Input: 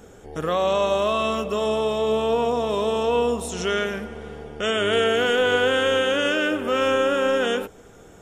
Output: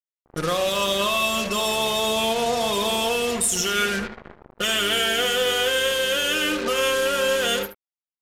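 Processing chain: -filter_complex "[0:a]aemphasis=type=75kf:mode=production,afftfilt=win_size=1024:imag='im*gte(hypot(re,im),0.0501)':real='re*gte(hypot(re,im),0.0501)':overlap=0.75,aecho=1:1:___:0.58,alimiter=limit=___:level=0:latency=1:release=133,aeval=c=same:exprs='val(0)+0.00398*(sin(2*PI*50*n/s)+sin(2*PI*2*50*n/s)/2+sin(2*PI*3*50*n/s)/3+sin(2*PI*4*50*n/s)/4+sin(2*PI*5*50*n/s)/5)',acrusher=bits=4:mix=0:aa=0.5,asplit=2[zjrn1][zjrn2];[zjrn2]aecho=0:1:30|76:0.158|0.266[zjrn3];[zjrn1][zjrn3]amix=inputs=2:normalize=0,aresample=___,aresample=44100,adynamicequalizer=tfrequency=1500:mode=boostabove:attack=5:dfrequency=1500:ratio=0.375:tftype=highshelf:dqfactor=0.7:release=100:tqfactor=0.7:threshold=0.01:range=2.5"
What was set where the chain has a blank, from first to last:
5.7, -16dB, 32000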